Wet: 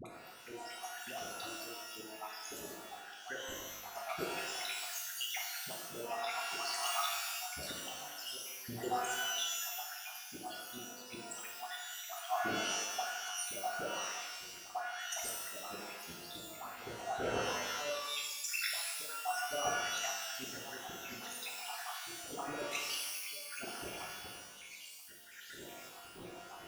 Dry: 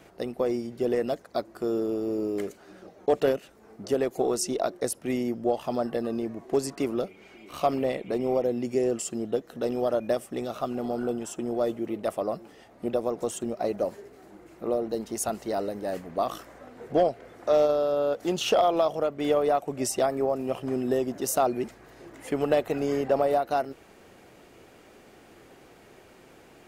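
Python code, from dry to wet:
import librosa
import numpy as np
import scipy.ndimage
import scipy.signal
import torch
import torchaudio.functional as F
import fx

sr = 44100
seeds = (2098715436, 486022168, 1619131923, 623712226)

y = fx.spec_dropout(x, sr, seeds[0], share_pct=83)
y = fx.over_compress(y, sr, threshold_db=-36.0, ratio=-1.0)
y = fx.auto_swell(y, sr, attack_ms=392.0)
y = fx.dispersion(y, sr, late='highs', ms=56.0, hz=660.0)
y = fx.rev_shimmer(y, sr, seeds[1], rt60_s=1.1, semitones=12, shimmer_db=-2, drr_db=-2.0)
y = F.gain(torch.from_numpy(y), 7.0).numpy()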